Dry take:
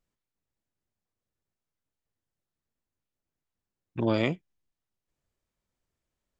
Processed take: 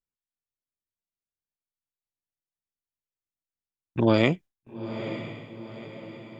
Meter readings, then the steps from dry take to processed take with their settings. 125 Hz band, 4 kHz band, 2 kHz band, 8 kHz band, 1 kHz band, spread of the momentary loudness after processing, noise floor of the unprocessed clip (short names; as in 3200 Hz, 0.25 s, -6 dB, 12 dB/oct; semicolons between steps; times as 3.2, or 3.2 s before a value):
+6.0 dB, +6.0 dB, +6.0 dB, n/a, +6.0 dB, 20 LU, under -85 dBFS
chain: diffused feedback echo 0.908 s, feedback 50%, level -11 dB; gate with hold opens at -50 dBFS; gain +5.5 dB